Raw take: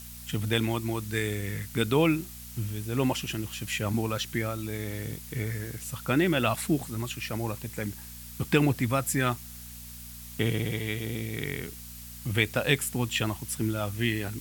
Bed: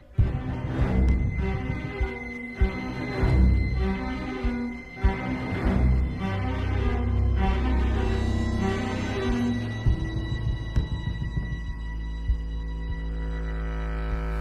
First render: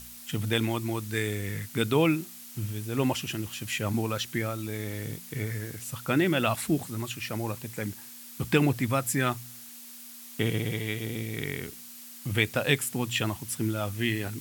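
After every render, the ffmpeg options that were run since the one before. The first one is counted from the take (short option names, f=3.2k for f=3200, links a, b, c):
-af "bandreject=f=60:t=h:w=4,bandreject=f=120:t=h:w=4,bandreject=f=180:t=h:w=4"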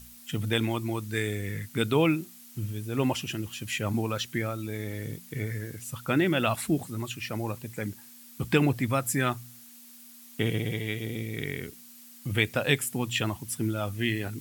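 -af "afftdn=nr=6:nf=-46"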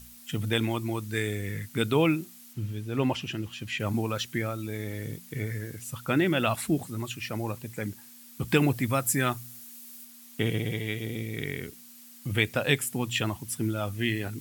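-filter_complex "[0:a]asettb=1/sr,asplit=3[a][b][c];[a]atrim=end=2.534[d];[b]atrim=start=2.53:end=3.8,asetpts=PTS-STARTPTS,afade=t=in:d=0.004:c=qsin,afade=t=out:st=1.266:d=0.004:c=qsin,acrossover=split=5200[e][f];[f]acompressor=threshold=-54dB:ratio=4:attack=1:release=60[g];[e][g]amix=inputs=2:normalize=0[h];[c]atrim=start=3.796[i];[d][h]acrossfade=d=0.004:c1=hsin:c2=qsin[j];[j][i]acrossfade=d=0.004:c1=qsin:c2=hsin,asettb=1/sr,asplit=3[k][l][m];[k]atrim=end=8.484[n];[l]atrim=start=8.48:end=10.05,asetpts=PTS-STARTPTS,afade=t=in:d=0.004:c=qsin,afade=t=out:st=1.566:d=0.004:c=qsin,highshelf=f=6.8k:g=5.5[o];[m]atrim=start=10.046[p];[n][o]acrossfade=d=0.004:c1=hsin:c2=qsin[q];[q][p]acrossfade=d=0.004:c1=qsin:c2=hsin"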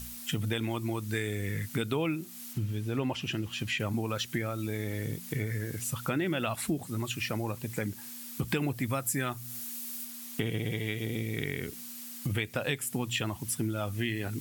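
-filter_complex "[0:a]asplit=2[a][b];[b]alimiter=limit=-16dB:level=0:latency=1:release=225,volume=1.5dB[c];[a][c]amix=inputs=2:normalize=0,acompressor=threshold=-31dB:ratio=3"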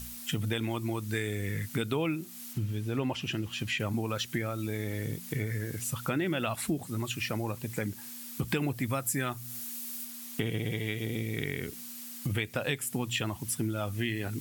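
-af anull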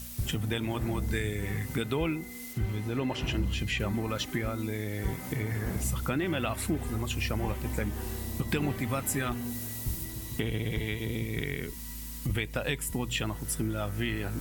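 -filter_complex "[1:a]volume=-11.5dB[a];[0:a][a]amix=inputs=2:normalize=0"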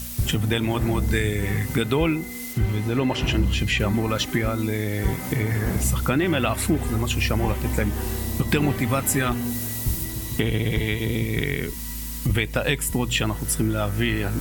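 -af "volume=8.5dB"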